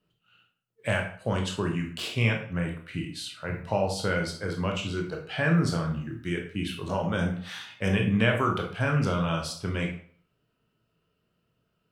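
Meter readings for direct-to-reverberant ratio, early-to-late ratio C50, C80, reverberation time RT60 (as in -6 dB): 1.5 dB, 7.0 dB, 11.5 dB, 0.55 s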